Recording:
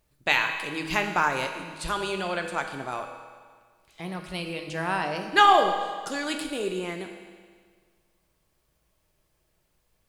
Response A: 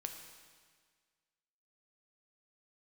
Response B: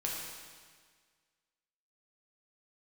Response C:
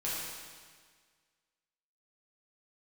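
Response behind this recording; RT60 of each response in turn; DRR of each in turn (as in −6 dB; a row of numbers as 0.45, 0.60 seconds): A; 1.7, 1.7, 1.7 seconds; 4.0, −3.5, −8.5 decibels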